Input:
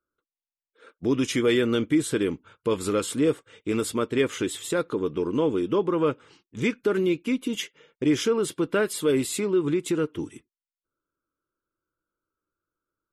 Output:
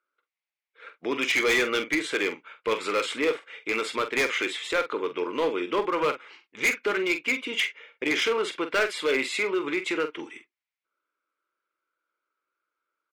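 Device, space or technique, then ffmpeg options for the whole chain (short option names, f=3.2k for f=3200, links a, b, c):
megaphone: -filter_complex "[0:a]highpass=620,lowpass=3.9k,equalizer=f=2.2k:t=o:w=0.5:g=10,asoftclip=type=hard:threshold=-24dB,asplit=2[a][b];[b]adelay=45,volume=-10dB[c];[a][c]amix=inputs=2:normalize=0,volume=5dB"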